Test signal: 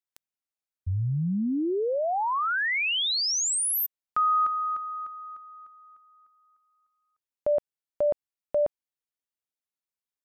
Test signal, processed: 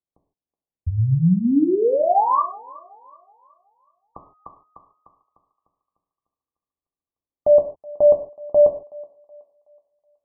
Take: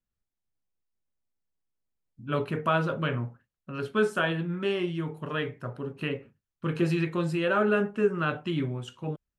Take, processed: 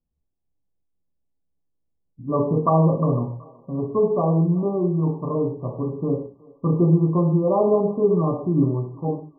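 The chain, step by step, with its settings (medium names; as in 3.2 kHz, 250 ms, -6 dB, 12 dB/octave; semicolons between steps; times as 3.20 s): level-controlled noise filter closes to 580 Hz, open at -23 dBFS; brick-wall FIR low-pass 1.2 kHz; peaking EQ 79 Hz +3 dB 0.34 oct; thinning echo 373 ms, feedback 45%, high-pass 450 Hz, level -21 dB; gated-style reverb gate 180 ms falling, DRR 3 dB; trim +7 dB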